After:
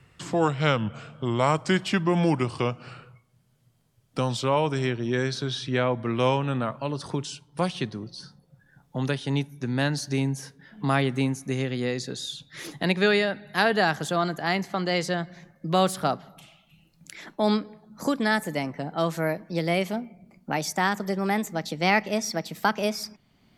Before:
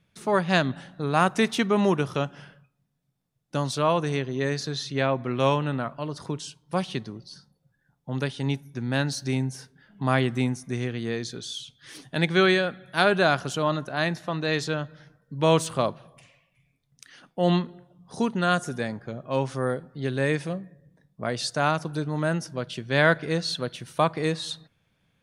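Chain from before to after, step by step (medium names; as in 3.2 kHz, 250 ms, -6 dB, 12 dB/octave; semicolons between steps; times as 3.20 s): gliding tape speed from 80% -> 134%; three bands compressed up and down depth 40%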